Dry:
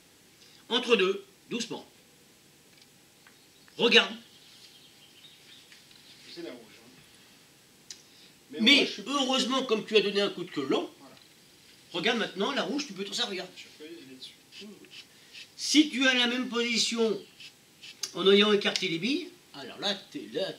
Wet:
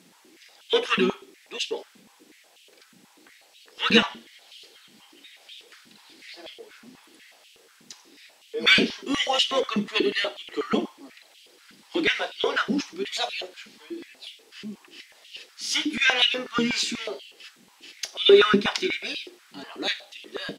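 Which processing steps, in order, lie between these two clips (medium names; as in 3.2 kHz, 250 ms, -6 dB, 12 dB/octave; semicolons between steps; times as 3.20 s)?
harmony voices -7 st -11 dB; step-sequenced high-pass 8.2 Hz 210–2900 Hz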